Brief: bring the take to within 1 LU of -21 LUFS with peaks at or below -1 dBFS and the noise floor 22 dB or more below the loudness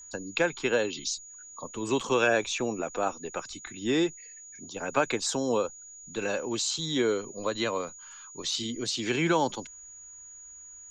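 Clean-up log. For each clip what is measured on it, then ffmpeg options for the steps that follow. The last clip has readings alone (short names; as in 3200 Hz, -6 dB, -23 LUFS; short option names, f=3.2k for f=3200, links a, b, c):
steady tone 6800 Hz; tone level -45 dBFS; loudness -29.5 LUFS; peak -11.5 dBFS; loudness target -21.0 LUFS
-> -af "bandreject=f=6.8k:w=30"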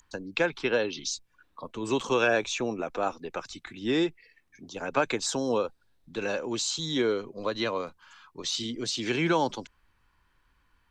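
steady tone none; loudness -29.5 LUFS; peak -11.5 dBFS; loudness target -21.0 LUFS
-> -af "volume=8.5dB"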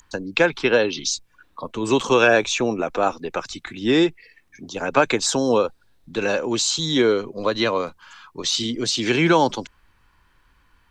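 loudness -21.0 LUFS; peak -3.0 dBFS; noise floor -61 dBFS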